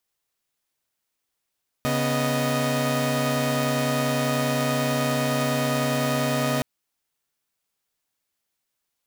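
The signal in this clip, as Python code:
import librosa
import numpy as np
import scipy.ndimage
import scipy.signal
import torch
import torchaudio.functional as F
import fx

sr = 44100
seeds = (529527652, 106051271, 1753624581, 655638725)

y = fx.chord(sr, length_s=4.77, notes=(49, 59, 75), wave='saw', level_db=-23.5)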